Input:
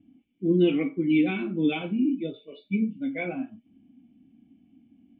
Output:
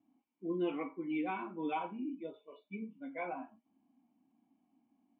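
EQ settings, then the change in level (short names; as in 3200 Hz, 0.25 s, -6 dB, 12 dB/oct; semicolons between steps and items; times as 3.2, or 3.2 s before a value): band-pass 970 Hz, Q 7.4; air absorption 81 m; +12.0 dB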